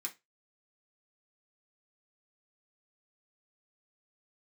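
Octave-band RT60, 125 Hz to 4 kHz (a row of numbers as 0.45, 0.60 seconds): 0.25, 0.20, 0.20, 0.20, 0.20, 0.20 seconds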